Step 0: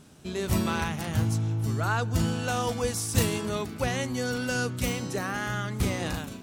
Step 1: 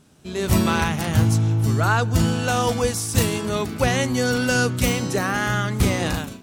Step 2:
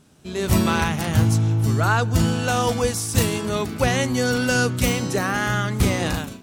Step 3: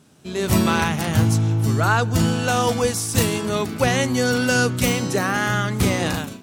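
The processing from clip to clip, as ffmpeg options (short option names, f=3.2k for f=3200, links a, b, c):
-af "dynaudnorm=f=230:g=3:m=11.5dB,volume=-2.5dB"
-af anull
-af "highpass=91,volume=1.5dB"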